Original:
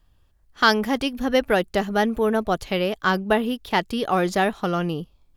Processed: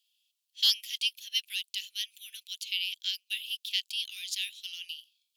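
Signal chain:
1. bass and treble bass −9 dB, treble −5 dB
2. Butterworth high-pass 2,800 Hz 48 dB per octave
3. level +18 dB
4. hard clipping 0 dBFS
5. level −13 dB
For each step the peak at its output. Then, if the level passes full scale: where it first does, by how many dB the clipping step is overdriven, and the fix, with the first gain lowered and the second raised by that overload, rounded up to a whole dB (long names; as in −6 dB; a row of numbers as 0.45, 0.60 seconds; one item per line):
−4.0, −13.0, +5.0, 0.0, −13.0 dBFS
step 3, 5.0 dB
step 3 +13 dB, step 5 −8 dB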